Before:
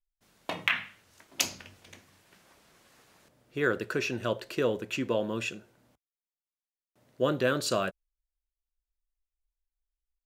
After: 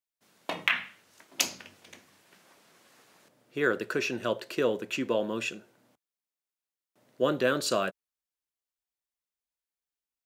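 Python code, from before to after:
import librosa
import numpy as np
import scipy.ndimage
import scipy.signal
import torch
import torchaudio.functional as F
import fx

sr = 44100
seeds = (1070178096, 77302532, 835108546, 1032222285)

y = scipy.signal.sosfilt(scipy.signal.butter(2, 170.0, 'highpass', fs=sr, output='sos'), x)
y = y * 10.0 ** (1.0 / 20.0)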